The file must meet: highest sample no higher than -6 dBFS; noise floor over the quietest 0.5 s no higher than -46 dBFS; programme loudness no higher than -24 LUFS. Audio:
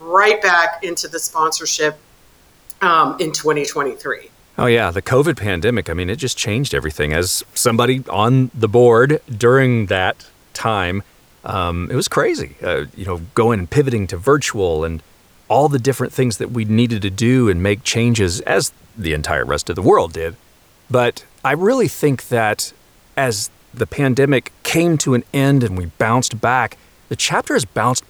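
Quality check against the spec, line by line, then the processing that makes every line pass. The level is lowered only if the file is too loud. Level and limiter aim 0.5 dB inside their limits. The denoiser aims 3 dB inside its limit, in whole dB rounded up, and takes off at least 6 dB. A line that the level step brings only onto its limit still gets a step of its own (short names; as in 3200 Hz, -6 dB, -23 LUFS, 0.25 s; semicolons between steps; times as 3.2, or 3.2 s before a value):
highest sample -1.5 dBFS: fail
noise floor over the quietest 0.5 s -51 dBFS: OK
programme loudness -17.0 LUFS: fail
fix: gain -7.5 dB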